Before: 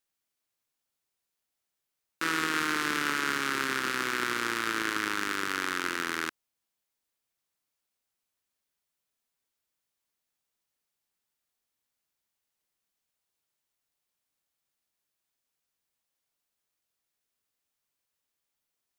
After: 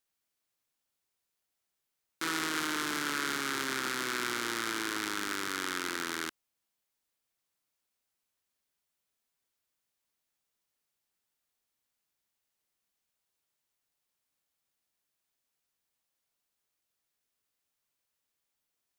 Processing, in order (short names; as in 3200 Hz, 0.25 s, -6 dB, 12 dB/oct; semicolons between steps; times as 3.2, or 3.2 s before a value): core saturation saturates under 4000 Hz